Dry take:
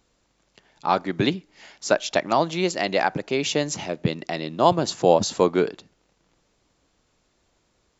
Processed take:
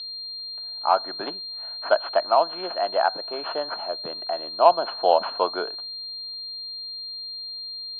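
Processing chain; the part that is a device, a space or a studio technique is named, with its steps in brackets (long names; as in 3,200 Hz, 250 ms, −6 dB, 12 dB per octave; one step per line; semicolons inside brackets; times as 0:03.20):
toy sound module (linearly interpolated sample-rate reduction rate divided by 6×; switching amplifier with a slow clock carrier 4,200 Hz; loudspeaker in its box 630–3,600 Hz, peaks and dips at 670 Hz +9 dB, 970 Hz +5 dB, 1,400 Hz +7 dB, 2,100 Hz −9 dB, 3,300 Hz +7 dB)
level −2 dB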